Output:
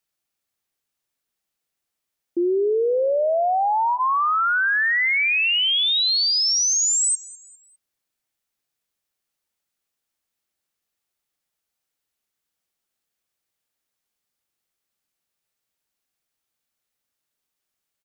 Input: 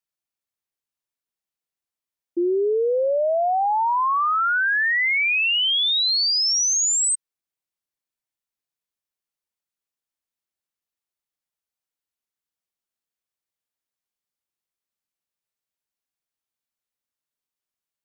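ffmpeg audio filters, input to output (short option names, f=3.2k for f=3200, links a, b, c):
-filter_complex "[0:a]bandreject=f=1k:w=15,alimiter=level_in=1dB:limit=-24dB:level=0:latency=1:release=115,volume=-1dB,asplit=2[a][b];[b]aecho=0:1:202|404|606:0.0944|0.0397|0.0167[c];[a][c]amix=inputs=2:normalize=0,volume=8dB"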